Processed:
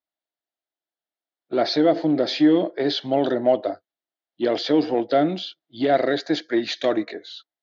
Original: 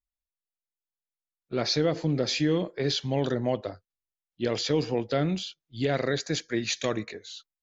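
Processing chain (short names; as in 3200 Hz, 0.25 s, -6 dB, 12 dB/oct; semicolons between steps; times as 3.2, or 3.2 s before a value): in parallel at -8.5 dB: overloaded stage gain 29 dB; on the sum: speaker cabinet 290–4100 Hz, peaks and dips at 310 Hz +8 dB, 460 Hz -3 dB, 670 Hz +9 dB, 1100 Hz -5 dB, 2500 Hz -9 dB; gain +4.5 dB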